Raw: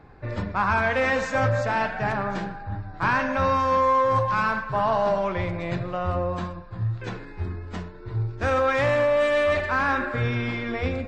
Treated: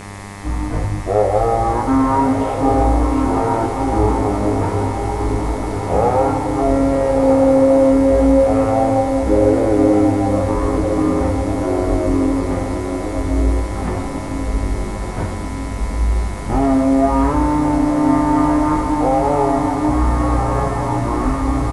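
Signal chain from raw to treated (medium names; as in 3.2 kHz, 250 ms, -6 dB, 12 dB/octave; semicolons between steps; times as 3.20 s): low-pass 3.3 kHz 12 dB/octave; peaking EQ 93 Hz -5 dB 0.35 oct; in parallel at +1 dB: compression 12:1, threshold -31 dBFS, peak gain reduction 14.5 dB; on the sum: word length cut 8-bit, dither triangular; wide varispeed 0.51×; mains buzz 100 Hz, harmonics 26, -38 dBFS -3 dB/octave; doubling 19 ms -4.5 dB; echo that smears into a reverb 1295 ms, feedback 56%, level -5.5 dB; trim +3 dB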